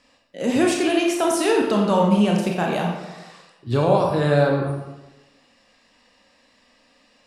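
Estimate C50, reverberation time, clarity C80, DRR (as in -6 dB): 3.0 dB, 1.1 s, 5.5 dB, -0.5 dB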